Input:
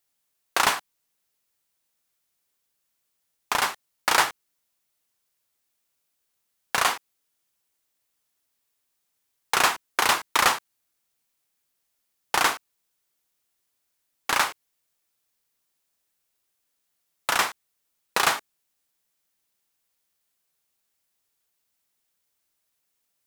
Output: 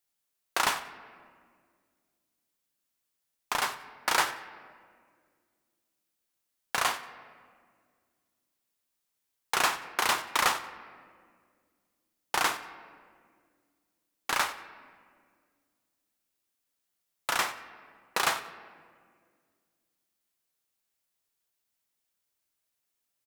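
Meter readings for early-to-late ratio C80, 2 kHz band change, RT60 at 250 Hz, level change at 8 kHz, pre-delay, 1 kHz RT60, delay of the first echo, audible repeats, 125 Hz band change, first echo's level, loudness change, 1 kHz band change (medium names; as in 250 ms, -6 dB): 13.5 dB, -5.0 dB, 2.7 s, -5.5 dB, 3 ms, 1.7 s, 91 ms, 1, -5.0 dB, -18.5 dB, -5.5 dB, -5.0 dB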